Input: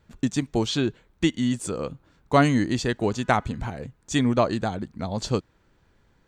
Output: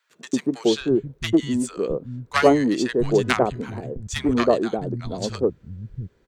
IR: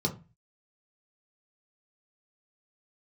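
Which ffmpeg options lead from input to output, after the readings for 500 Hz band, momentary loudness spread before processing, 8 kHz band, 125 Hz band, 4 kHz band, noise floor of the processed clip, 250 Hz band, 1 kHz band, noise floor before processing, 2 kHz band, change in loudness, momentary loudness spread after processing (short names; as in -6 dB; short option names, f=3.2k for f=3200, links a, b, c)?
+6.0 dB, 11 LU, +0.5 dB, -2.5 dB, +1.0 dB, -61 dBFS, +2.5 dB, +0.5 dB, -64 dBFS, +2.5 dB, +2.5 dB, 13 LU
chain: -filter_complex "[0:a]bandreject=f=850:w=12,aeval=exprs='0.596*(cos(1*acos(clip(val(0)/0.596,-1,1)))-cos(1*PI/2))+0.299*(cos(2*acos(clip(val(0)/0.596,-1,1)))-cos(2*PI/2))+0.106*(cos(3*acos(clip(val(0)/0.596,-1,1)))-cos(3*PI/2))+0.0237*(cos(8*acos(clip(val(0)/0.596,-1,1)))-cos(8*PI/2))':c=same,equalizer=f=410:w=1.8:g=9,acrossover=split=160|1000[a][b][c];[b]adelay=100[d];[a]adelay=670[e];[e][d][c]amix=inputs=3:normalize=0,volume=6.5dB"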